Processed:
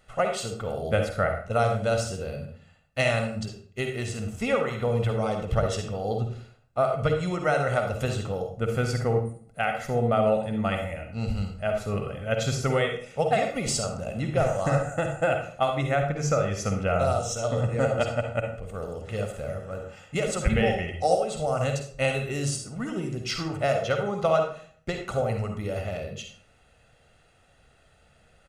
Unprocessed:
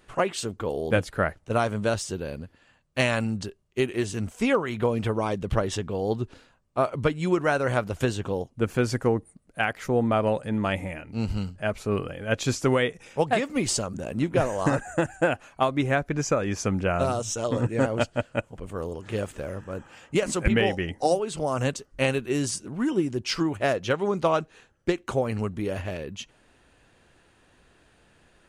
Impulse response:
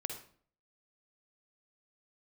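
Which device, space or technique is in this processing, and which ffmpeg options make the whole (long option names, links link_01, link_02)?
microphone above a desk: -filter_complex "[0:a]aecho=1:1:1.5:0.65[link_01];[1:a]atrim=start_sample=2205[link_02];[link_01][link_02]afir=irnorm=-1:irlink=0,volume=-2dB"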